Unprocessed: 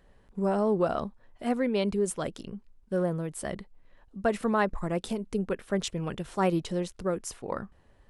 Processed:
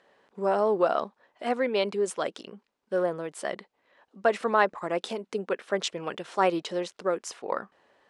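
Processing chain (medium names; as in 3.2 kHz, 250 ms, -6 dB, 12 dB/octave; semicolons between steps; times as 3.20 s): band-pass 430–6000 Hz; trim +5 dB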